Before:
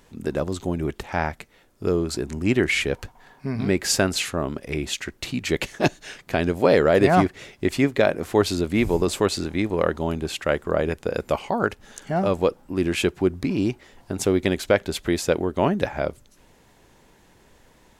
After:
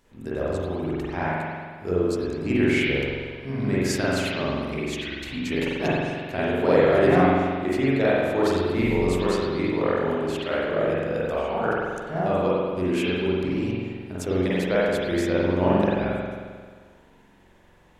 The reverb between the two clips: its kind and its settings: spring tank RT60 1.7 s, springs 44 ms, chirp 70 ms, DRR -8.5 dB; gain -9.5 dB

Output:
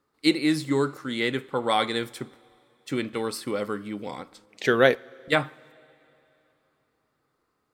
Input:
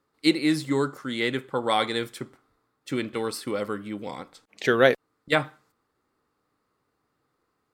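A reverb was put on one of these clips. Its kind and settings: two-slope reverb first 0.22 s, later 3.1 s, from -18 dB, DRR 18 dB

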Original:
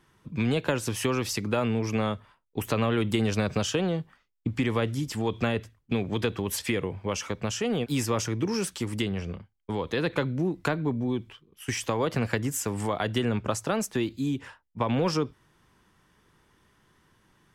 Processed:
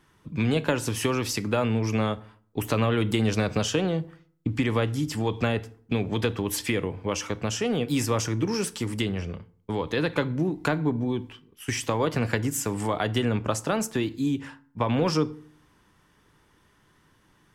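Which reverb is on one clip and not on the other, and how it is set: FDN reverb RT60 0.52 s, low-frequency decay 1.25×, high-frequency decay 0.65×, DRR 13.5 dB; gain +1.5 dB

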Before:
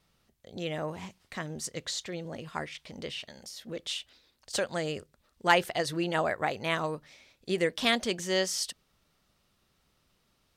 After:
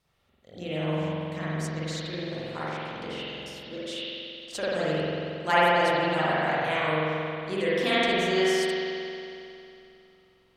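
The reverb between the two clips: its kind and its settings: spring tank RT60 2.8 s, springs 45 ms, chirp 45 ms, DRR -10 dB; gain -5.5 dB

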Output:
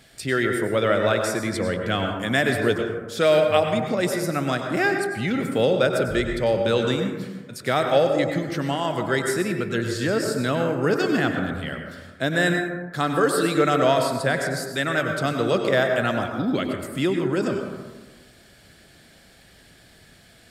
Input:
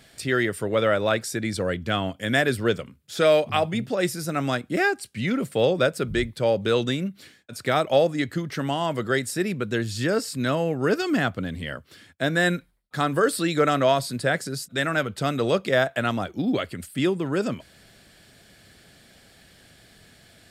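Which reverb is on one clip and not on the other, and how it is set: plate-style reverb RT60 1.3 s, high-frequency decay 0.3×, pre-delay 85 ms, DRR 3.5 dB

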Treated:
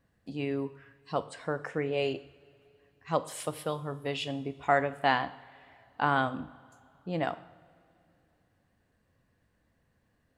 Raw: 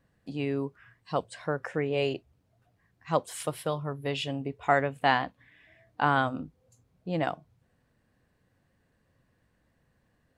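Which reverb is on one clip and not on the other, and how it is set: two-slope reverb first 0.67 s, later 3 s, from -16 dB, DRR 12 dB; gain -2 dB

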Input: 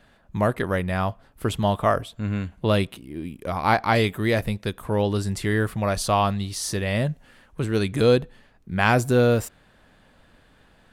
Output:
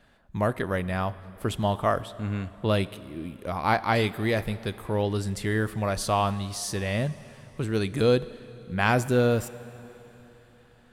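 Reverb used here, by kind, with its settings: plate-style reverb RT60 3.6 s, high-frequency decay 0.95×, DRR 16 dB; gain -3.5 dB

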